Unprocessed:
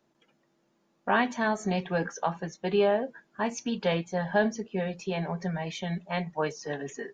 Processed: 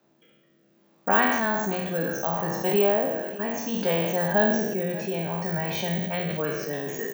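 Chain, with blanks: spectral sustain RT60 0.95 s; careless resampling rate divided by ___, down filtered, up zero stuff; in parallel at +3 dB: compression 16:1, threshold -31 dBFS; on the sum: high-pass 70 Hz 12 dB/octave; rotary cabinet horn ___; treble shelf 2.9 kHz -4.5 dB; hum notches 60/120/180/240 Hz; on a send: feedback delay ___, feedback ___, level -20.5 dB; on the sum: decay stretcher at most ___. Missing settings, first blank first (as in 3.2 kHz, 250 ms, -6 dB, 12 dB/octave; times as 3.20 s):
2×, 0.65 Hz, 590 ms, 59%, 34 dB/s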